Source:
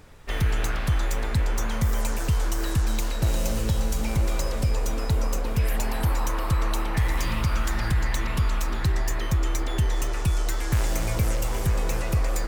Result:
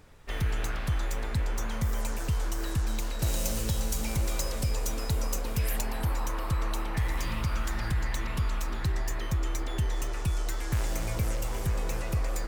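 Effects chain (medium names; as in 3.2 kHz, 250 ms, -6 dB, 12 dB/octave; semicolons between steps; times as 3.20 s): 3.19–5.81 s: treble shelf 3.8 kHz +8.5 dB; trim -5.5 dB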